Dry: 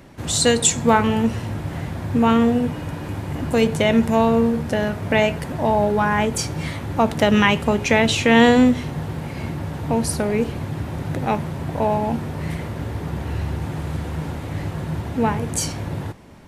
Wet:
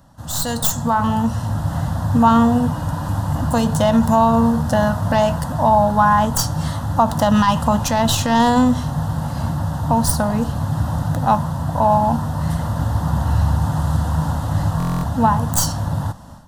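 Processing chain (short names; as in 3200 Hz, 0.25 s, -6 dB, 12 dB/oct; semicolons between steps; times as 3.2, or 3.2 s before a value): tracing distortion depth 0.11 ms; limiter -9.5 dBFS, peak gain reduction 8.5 dB; fixed phaser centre 950 Hz, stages 4; AGC gain up to 12 dB; dynamic EQ 1000 Hz, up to +5 dB, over -33 dBFS, Q 5; stuck buffer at 14.78, samples 1024, times 10; gain -2 dB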